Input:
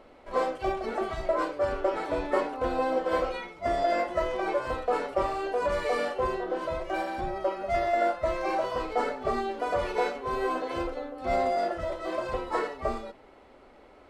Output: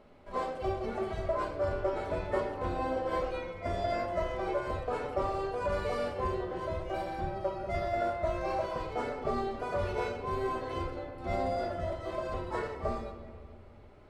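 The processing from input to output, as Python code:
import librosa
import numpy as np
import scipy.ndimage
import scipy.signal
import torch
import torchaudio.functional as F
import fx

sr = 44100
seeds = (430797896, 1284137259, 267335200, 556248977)

y = fx.peak_eq(x, sr, hz=100.0, db=14.0, octaves=1.3)
y = fx.room_shoebox(y, sr, seeds[0], volume_m3=3200.0, walls='mixed', distance_m=1.3)
y = y * 10.0 ** (-7.0 / 20.0)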